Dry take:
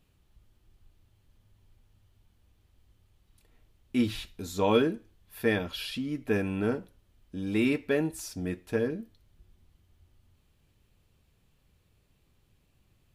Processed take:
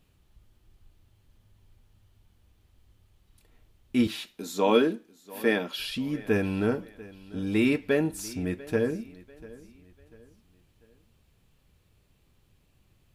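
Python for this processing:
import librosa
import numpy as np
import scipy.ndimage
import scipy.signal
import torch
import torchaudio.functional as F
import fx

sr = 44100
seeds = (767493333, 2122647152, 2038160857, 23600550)

y = fx.highpass(x, sr, hz=190.0, slope=24, at=(4.07, 5.8))
y = fx.echo_feedback(y, sr, ms=693, feedback_pct=38, wet_db=-20.0)
y = y * 10.0 ** (2.5 / 20.0)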